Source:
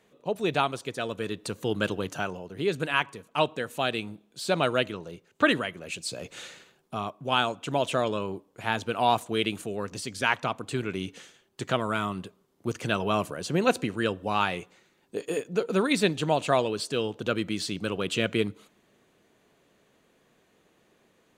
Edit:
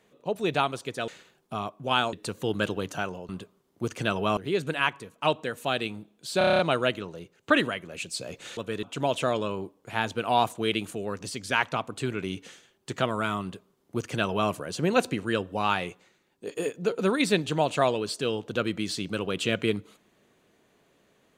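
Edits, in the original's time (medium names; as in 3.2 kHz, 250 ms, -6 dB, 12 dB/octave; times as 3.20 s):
1.08–1.34 s: swap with 6.49–7.54 s
4.51 s: stutter 0.03 s, 8 plays
12.13–13.21 s: copy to 2.50 s
14.55–15.18 s: fade out, to -6 dB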